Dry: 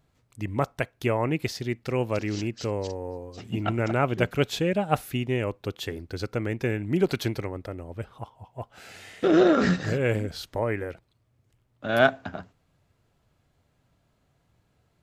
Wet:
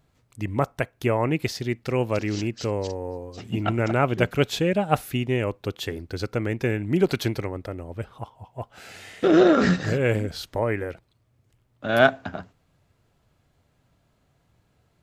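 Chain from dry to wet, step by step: 0.47–1.13 s: dynamic bell 4.2 kHz, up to -5 dB, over -46 dBFS, Q 0.93; trim +2.5 dB

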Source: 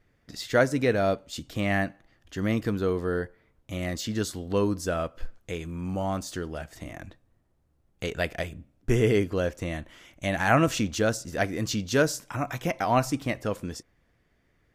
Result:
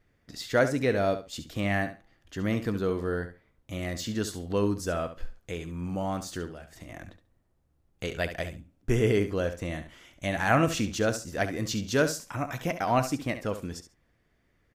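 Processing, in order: 6.46–6.89 s: compression 4:1, threshold -40 dBFS, peak gain reduction 8 dB; feedback delay 69 ms, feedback 18%, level -11 dB; trim -2 dB

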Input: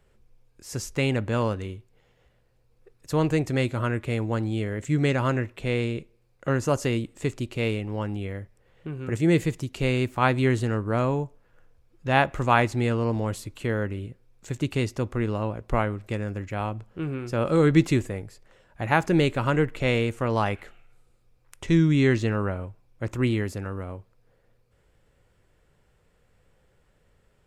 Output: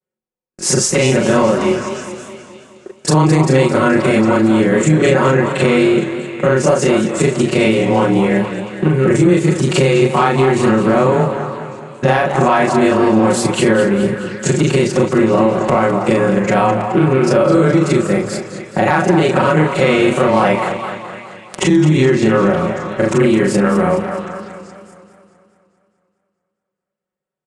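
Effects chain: short-time spectra conjugated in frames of 91 ms; high-pass 180 Hz 12 dB/octave; gate -56 dBFS, range -47 dB; peaking EQ 3.2 kHz -5 dB 2.2 oct; comb 5.4 ms, depth 70%; compression 5:1, threshold -40 dBFS, peak gain reduction 21 dB; saturation -29.5 dBFS, distortion -26 dB; on a send: repeats whose band climbs or falls 230 ms, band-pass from 800 Hz, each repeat 0.7 oct, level -8 dB; on the sum: resampled via 22.05 kHz; loudness maximiser +33.5 dB; modulated delay 211 ms, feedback 58%, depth 114 cents, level -11 dB; trim -3 dB

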